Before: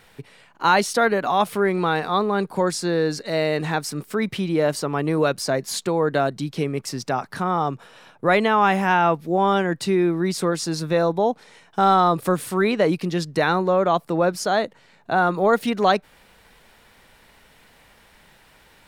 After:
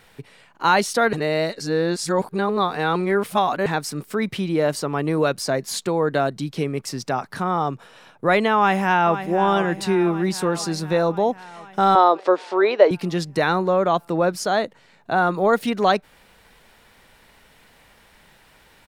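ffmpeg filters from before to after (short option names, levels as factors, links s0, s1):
-filter_complex "[0:a]asplit=2[s0][s1];[s1]afade=t=in:st=8.56:d=0.01,afade=t=out:st=9.3:d=0.01,aecho=0:1:500|1000|1500|2000|2500|3000|3500|4000|4500|5000:0.281838|0.197287|0.138101|0.0966705|0.0676694|0.0473686|0.033158|0.0232106|0.0162474|0.0113732[s2];[s0][s2]amix=inputs=2:normalize=0,asettb=1/sr,asplit=3[s3][s4][s5];[s3]atrim=end=11.954[s6];[s4]atrim=start=11.95:end=12.91,asetpts=PTS-STARTPTS,afade=t=in:d=0.004:c=qsin,afade=t=out:st=0.956:d=0.004:c=qsin,highpass=f=350:w=0.5412,highpass=f=350:w=1.3066,equalizer=f=380:t=q:w=4:g=5,equalizer=f=590:t=q:w=4:g=8,equalizer=f=910:t=q:w=4:g=5,lowpass=f=5200:w=0.5412,lowpass=f=5200:w=1.3066[s7];[s5]atrim=start=12.906[s8];[s6][s7]acrossfade=d=0.004:c1=hsin:c2=qsin[s9];[s9][s8]acrossfade=d=0.004:c1=qsin:c2=hsin,asplit=3[s10][s11][s12];[s10]atrim=end=1.132[s13];[s11]atrim=start=1.128:end=3.662,asetpts=PTS-STARTPTS,areverse[s14];[s12]atrim=start=3.658[s15];[s13][s14]acrossfade=d=0.004:c1=hsin:c2=hsin[s16];[s16][s15]acrossfade=d=0.004:c1=hsin:c2=hsin"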